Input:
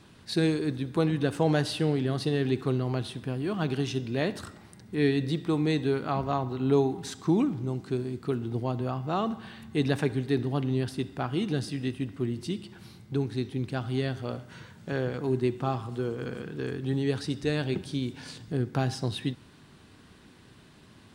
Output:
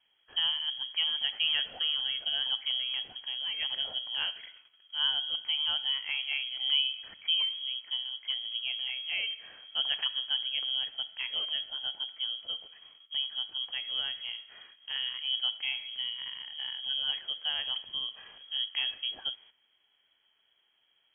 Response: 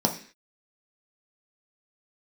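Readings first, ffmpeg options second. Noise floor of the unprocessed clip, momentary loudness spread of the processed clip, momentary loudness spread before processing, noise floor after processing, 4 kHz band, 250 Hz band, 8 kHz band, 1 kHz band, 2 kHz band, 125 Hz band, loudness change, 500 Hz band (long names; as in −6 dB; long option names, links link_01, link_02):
−54 dBFS, 9 LU, 9 LU, −72 dBFS, +14.5 dB, below −35 dB, below −30 dB, −14.5 dB, +0.5 dB, below −40 dB, −1.0 dB, −28.5 dB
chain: -af "agate=range=-12dB:threshold=-49dB:ratio=16:detection=peak,lowpass=frequency=2900:width_type=q:width=0.5098,lowpass=frequency=2900:width_type=q:width=0.6013,lowpass=frequency=2900:width_type=q:width=0.9,lowpass=frequency=2900:width_type=q:width=2.563,afreqshift=-3400,volume=-5dB"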